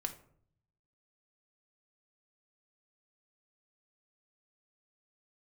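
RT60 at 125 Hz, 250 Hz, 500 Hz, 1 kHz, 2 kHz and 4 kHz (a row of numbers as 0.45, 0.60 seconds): 1.2, 0.85, 0.65, 0.55, 0.40, 0.30 seconds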